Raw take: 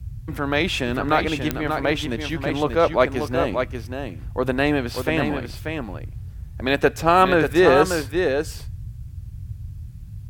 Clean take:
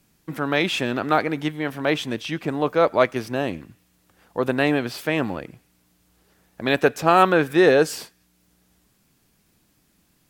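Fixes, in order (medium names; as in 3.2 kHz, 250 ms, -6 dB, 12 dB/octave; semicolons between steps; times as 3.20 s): de-click; noise print and reduce 28 dB; inverse comb 586 ms -6 dB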